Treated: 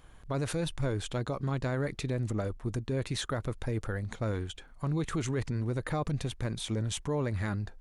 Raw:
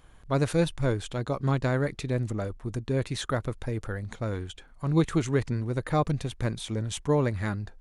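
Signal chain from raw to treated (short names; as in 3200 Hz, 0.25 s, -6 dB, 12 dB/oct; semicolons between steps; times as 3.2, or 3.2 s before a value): limiter -23.5 dBFS, peak gain reduction 11 dB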